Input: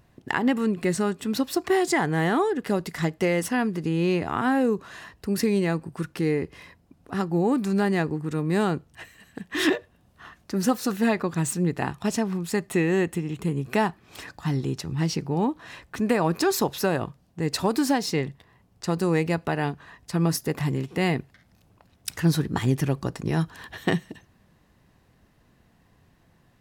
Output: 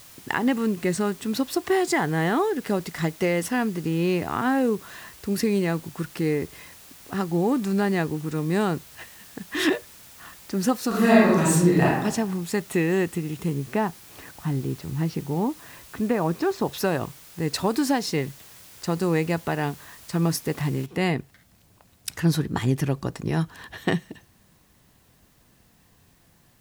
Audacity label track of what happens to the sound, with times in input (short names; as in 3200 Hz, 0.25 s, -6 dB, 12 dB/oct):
10.880000	11.850000	reverb throw, RT60 0.91 s, DRR -7 dB
13.570000	16.700000	tape spacing loss at 10 kHz 25 dB
20.860000	20.860000	noise floor step -48 dB -64 dB